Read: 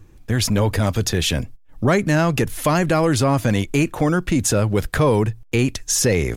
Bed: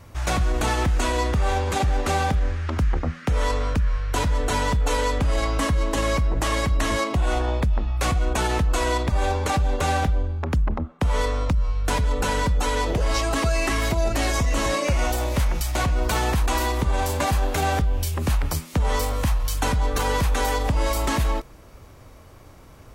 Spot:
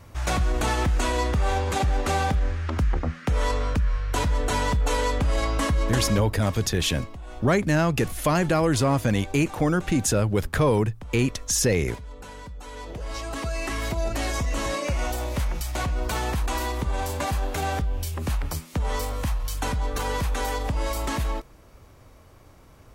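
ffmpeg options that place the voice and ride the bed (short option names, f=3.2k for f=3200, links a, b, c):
-filter_complex "[0:a]adelay=5600,volume=-4dB[a];[1:a]volume=12dB,afade=t=out:st=5.88:d=0.44:silence=0.149624,afade=t=in:st=12.62:d=1.41:silence=0.211349[b];[a][b]amix=inputs=2:normalize=0"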